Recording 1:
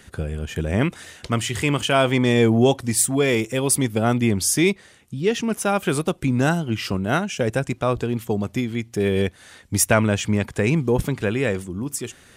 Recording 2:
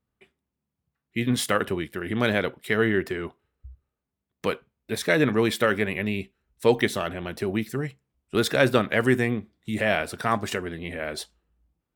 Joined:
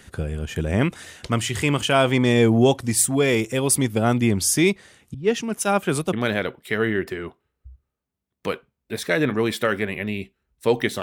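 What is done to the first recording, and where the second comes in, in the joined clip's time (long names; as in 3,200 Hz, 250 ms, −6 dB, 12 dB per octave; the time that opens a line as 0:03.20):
recording 1
0:05.14–0:06.13: multiband upward and downward expander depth 100%
0:06.13: continue with recording 2 from 0:02.12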